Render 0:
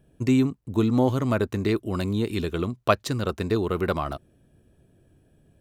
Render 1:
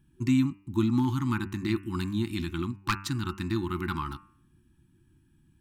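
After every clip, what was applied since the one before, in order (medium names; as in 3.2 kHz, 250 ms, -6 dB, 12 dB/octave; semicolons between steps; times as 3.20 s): de-hum 98.41 Hz, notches 29; wavefolder -11 dBFS; FFT band-reject 370–810 Hz; trim -3 dB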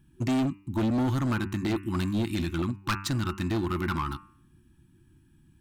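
hard clipper -26.5 dBFS, distortion -9 dB; trim +3.5 dB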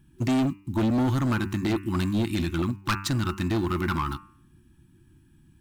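block-companded coder 7-bit; trim +2.5 dB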